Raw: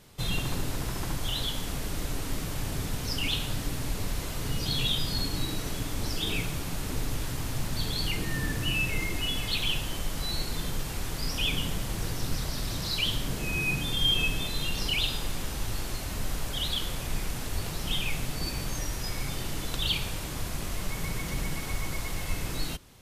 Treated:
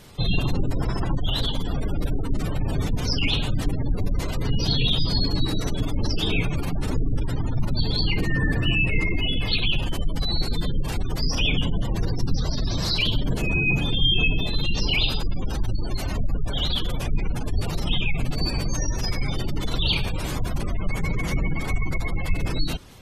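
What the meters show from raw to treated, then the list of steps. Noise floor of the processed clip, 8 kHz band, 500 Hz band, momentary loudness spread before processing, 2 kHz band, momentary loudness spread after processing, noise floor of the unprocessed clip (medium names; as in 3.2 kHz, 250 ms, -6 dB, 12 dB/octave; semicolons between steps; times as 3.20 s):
-28 dBFS, -3.0 dB, +6.5 dB, 7 LU, +5.5 dB, 7 LU, -35 dBFS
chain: spectral gate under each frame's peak -25 dB strong; dynamic bell 3.2 kHz, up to -5 dB, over -45 dBFS, Q 2.4; trim +8.5 dB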